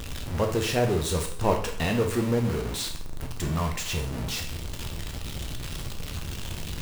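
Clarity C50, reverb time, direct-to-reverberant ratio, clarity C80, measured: 8.0 dB, 0.55 s, 2.5 dB, 12.0 dB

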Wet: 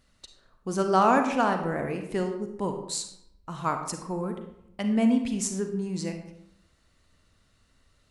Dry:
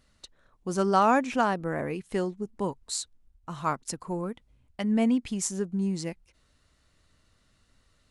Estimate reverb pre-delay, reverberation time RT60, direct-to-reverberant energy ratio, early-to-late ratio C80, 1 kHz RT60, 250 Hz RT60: 36 ms, 0.80 s, 5.5 dB, 9.5 dB, 0.80 s, 0.95 s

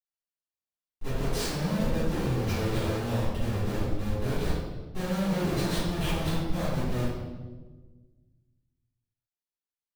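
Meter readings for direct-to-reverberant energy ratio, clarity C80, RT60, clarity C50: -16.0 dB, 1.5 dB, 1.3 s, -2.0 dB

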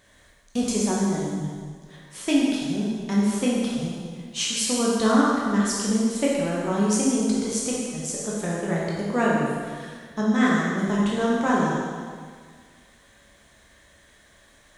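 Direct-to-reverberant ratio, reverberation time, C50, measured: -5.5 dB, 1.8 s, -1.5 dB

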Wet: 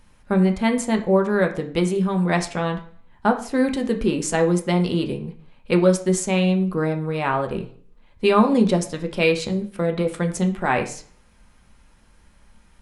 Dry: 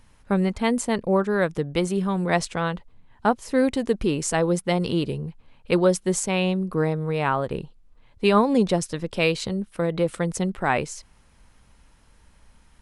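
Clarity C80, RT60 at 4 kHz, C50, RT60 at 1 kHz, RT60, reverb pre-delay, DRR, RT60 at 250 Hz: 15.5 dB, 0.45 s, 11.5 dB, 0.50 s, 0.50 s, 3 ms, 3.5 dB, 0.55 s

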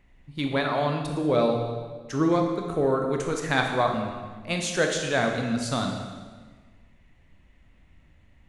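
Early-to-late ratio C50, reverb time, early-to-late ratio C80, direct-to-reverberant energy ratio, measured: 4.0 dB, 1.5 s, 6.0 dB, 2.5 dB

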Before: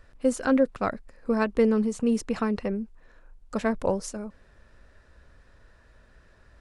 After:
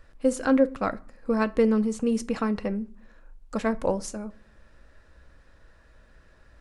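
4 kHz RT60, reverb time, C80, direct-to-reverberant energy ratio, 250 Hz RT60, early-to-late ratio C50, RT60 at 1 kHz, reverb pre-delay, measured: 0.25 s, 0.45 s, 26.0 dB, 11.5 dB, 0.65 s, 22.0 dB, 0.50 s, 4 ms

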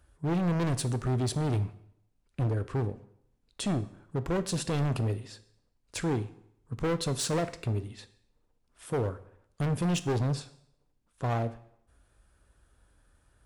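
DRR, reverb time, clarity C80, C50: 11.5 dB, 0.70 s, 18.5 dB, 16.0 dB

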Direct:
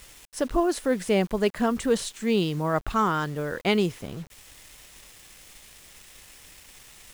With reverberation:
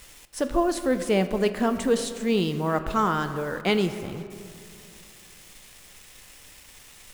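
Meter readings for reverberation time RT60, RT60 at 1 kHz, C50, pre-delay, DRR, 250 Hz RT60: 2.6 s, 2.4 s, 10.5 dB, 4 ms, 9.0 dB, 2.8 s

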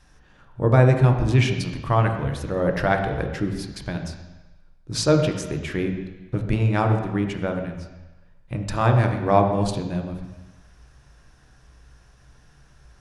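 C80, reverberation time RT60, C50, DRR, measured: 8.0 dB, 1.1 s, 6.5 dB, 4.0 dB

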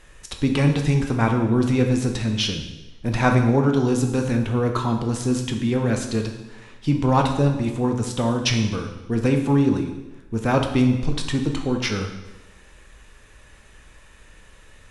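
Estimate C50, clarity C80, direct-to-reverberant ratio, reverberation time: 6.5 dB, 9.0 dB, 3.5 dB, 1.1 s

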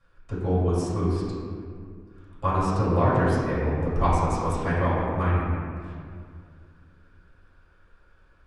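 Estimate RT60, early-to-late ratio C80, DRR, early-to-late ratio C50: 2.1 s, -0.5 dB, -11.5 dB, -2.0 dB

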